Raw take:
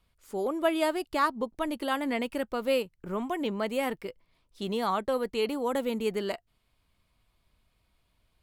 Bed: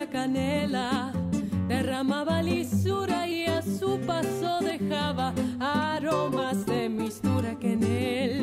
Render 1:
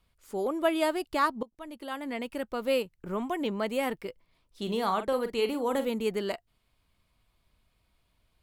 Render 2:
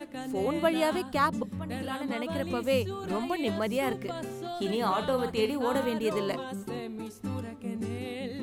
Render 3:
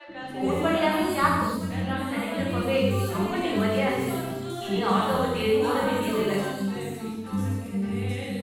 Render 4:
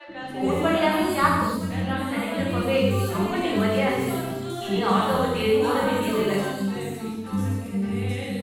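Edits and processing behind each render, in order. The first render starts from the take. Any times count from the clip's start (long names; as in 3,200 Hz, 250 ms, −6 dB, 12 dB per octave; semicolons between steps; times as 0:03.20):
0:01.43–0:02.81: fade in, from −18.5 dB; 0:04.62–0:05.88: double-tracking delay 44 ms −10 dB
mix in bed −9 dB
three-band delay without the direct sound mids, lows, highs 80/270 ms, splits 540/4,600 Hz; reverb whose tail is shaped and stops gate 330 ms falling, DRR −4.5 dB
level +2 dB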